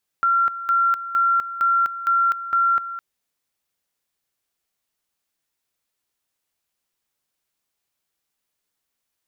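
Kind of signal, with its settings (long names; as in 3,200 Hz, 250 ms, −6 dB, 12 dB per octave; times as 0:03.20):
tone at two levels in turn 1,370 Hz −15 dBFS, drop 13 dB, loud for 0.25 s, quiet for 0.21 s, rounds 6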